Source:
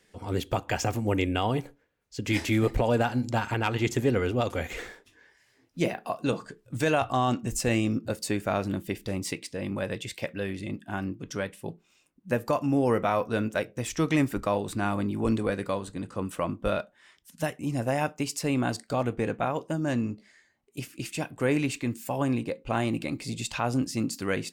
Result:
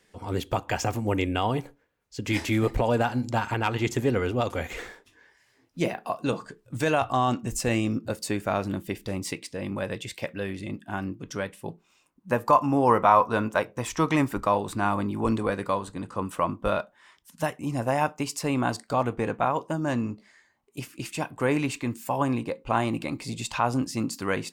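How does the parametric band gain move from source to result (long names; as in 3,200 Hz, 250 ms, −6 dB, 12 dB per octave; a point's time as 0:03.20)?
parametric band 1,000 Hz 0.76 octaves
0:11.44 +3.5 dB
0:12.64 +15 dB
0:13.89 +15 dB
0:14.42 +8.5 dB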